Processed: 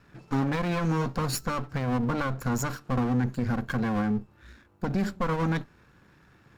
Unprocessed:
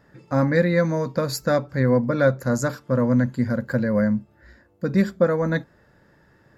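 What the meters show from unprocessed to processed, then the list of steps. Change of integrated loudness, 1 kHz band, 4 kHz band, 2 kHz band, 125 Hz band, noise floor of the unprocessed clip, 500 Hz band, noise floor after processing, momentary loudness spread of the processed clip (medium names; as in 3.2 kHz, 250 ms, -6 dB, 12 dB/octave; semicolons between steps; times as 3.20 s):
-6.5 dB, -0.5 dB, -2.5 dB, -6.5 dB, -5.0 dB, -58 dBFS, -12.5 dB, -59 dBFS, 4 LU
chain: comb filter that takes the minimum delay 0.72 ms; peak limiter -18.5 dBFS, peak gain reduction 10.5 dB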